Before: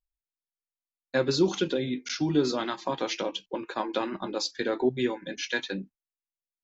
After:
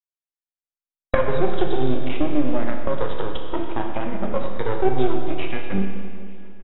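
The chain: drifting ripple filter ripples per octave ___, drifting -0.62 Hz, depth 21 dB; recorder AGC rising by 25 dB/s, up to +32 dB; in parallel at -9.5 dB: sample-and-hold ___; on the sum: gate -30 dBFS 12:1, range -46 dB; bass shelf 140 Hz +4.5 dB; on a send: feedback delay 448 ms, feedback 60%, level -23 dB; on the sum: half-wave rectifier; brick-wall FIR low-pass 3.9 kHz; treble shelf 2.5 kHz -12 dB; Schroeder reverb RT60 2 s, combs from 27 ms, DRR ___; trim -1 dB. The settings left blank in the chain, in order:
0.62, 23×, 3 dB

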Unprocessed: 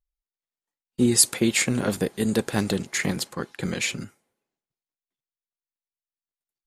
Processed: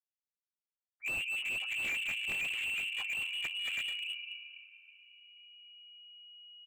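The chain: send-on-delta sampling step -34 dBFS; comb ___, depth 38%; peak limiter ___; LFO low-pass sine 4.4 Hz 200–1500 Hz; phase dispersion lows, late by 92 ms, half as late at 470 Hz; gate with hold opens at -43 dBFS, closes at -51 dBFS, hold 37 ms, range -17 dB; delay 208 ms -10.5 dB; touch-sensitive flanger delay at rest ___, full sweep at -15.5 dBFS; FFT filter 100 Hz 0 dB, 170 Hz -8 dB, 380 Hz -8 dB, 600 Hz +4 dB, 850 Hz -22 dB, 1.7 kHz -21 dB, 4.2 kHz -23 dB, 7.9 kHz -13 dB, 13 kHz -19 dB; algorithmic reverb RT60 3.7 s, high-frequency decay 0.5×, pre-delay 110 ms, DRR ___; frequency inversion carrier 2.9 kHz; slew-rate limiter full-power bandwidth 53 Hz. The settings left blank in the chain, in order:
3.8 ms, -12 dBFS, 6.3 ms, 12 dB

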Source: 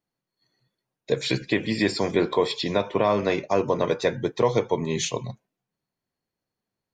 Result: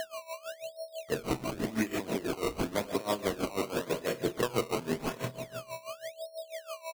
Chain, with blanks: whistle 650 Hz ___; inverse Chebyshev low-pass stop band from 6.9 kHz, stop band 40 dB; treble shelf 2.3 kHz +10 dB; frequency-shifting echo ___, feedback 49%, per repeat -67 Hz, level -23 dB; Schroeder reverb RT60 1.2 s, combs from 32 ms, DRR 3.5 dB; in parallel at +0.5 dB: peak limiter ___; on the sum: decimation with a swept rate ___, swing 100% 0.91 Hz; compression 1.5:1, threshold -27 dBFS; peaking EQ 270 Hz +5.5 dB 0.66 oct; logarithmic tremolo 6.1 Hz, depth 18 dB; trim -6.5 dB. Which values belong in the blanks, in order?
-30 dBFS, 86 ms, -17.5 dBFS, 18×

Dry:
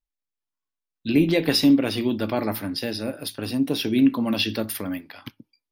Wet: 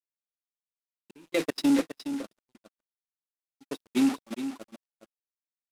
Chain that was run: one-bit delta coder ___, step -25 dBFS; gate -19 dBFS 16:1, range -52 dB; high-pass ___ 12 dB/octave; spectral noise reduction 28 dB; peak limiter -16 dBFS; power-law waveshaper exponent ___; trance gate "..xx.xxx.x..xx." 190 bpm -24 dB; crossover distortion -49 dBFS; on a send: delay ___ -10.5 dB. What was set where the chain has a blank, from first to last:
64 kbps, 250 Hz, 0.7, 416 ms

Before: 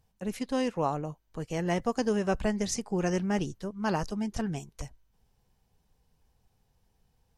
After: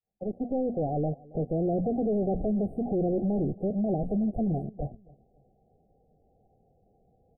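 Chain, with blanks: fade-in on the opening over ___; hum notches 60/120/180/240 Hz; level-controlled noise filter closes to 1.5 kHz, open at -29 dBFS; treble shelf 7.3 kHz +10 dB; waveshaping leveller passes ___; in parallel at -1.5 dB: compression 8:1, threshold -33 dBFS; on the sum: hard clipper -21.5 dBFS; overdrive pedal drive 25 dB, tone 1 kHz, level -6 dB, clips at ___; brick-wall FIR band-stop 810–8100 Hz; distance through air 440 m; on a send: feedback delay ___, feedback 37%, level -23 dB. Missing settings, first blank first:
1.25 s, 2, -21.5 dBFS, 274 ms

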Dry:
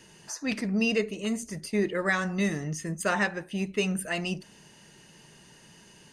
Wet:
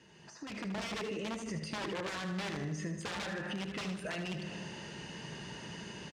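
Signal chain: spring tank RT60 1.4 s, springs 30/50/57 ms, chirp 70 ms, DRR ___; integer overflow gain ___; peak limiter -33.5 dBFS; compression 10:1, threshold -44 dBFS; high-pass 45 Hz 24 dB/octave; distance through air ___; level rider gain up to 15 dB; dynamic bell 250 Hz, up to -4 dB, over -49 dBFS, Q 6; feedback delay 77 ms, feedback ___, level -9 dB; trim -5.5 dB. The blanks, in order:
15.5 dB, 22.5 dB, 110 m, 50%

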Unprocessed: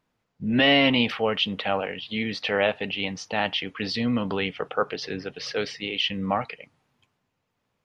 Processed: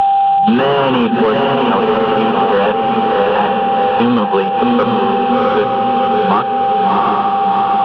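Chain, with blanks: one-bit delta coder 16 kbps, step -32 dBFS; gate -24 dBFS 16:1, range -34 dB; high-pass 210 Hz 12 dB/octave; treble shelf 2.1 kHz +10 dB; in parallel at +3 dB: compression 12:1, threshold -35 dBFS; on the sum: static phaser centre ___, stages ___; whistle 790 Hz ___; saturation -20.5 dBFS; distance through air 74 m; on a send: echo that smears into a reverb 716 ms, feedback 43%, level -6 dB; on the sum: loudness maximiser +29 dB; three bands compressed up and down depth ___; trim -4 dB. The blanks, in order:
420 Hz, 8, -38 dBFS, 100%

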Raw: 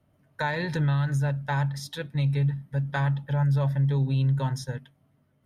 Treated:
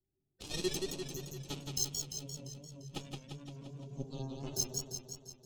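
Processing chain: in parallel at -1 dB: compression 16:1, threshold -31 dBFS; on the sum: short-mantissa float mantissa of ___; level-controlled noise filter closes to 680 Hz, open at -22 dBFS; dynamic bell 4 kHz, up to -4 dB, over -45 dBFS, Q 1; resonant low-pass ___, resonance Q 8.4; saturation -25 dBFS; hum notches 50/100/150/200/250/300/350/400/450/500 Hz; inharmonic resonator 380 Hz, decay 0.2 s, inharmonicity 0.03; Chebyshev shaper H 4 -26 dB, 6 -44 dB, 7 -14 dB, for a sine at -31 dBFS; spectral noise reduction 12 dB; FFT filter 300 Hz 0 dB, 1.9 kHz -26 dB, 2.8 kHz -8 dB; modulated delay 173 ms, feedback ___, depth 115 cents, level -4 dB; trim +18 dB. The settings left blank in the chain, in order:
4-bit, 6.3 kHz, 62%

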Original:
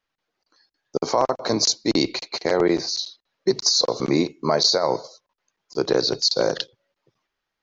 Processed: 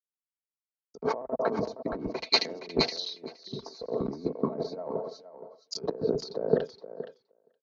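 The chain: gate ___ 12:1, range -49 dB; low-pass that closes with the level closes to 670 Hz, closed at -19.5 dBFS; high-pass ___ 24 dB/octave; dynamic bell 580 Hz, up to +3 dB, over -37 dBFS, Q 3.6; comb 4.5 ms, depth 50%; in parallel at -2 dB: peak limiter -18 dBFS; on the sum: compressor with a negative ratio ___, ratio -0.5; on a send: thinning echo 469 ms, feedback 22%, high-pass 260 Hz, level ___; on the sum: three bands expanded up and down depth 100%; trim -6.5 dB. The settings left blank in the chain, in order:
-53 dBFS, 43 Hz, -23 dBFS, -5 dB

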